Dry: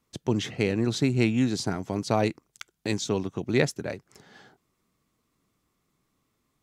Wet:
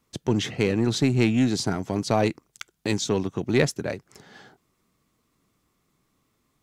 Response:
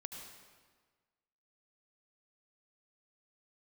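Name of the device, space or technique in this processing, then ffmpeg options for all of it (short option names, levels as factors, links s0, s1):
parallel distortion: -filter_complex "[0:a]asplit=2[s0][s1];[s1]asoftclip=type=hard:threshold=0.0708,volume=0.531[s2];[s0][s2]amix=inputs=2:normalize=0"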